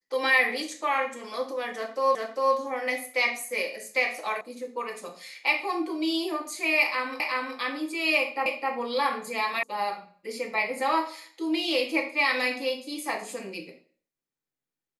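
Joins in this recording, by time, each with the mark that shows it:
0:02.15: the same again, the last 0.4 s
0:04.41: cut off before it has died away
0:07.20: the same again, the last 0.37 s
0:08.46: the same again, the last 0.26 s
0:09.63: cut off before it has died away

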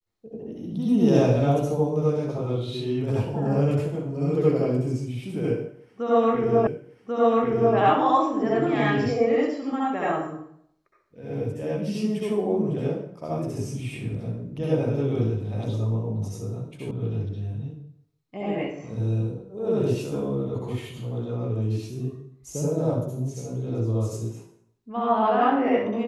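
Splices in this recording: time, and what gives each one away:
0:06.67: the same again, the last 1.09 s
0:16.91: cut off before it has died away

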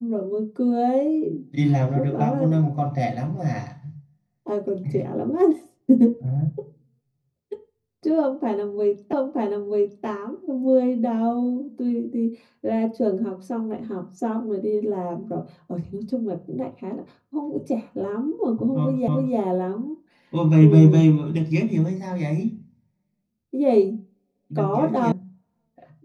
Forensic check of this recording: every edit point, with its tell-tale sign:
0:09.13: the same again, the last 0.93 s
0:19.08: the same again, the last 0.3 s
0:25.12: cut off before it has died away

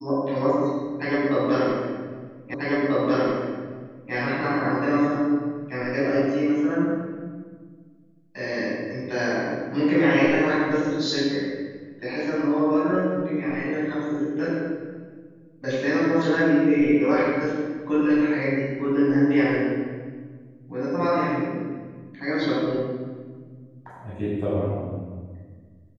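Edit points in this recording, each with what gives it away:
0:02.54: the same again, the last 1.59 s

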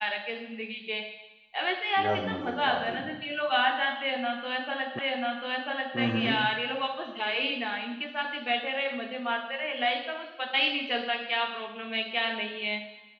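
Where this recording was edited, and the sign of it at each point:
0:04.99: the same again, the last 0.99 s

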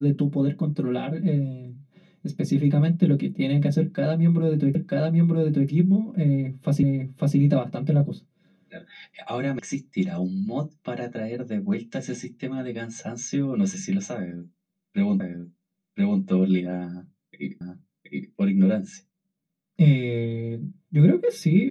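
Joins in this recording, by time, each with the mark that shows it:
0:04.75: the same again, the last 0.94 s
0:06.83: the same again, the last 0.55 s
0:09.59: cut off before it has died away
0:15.20: the same again, the last 1.02 s
0:17.61: the same again, the last 0.72 s

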